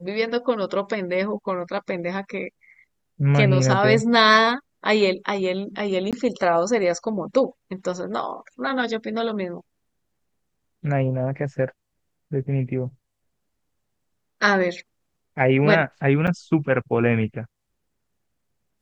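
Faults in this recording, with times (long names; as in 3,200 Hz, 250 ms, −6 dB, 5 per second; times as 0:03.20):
0:06.11–0:06.13: drop-out 17 ms
0:16.27–0:16.28: drop-out 7.1 ms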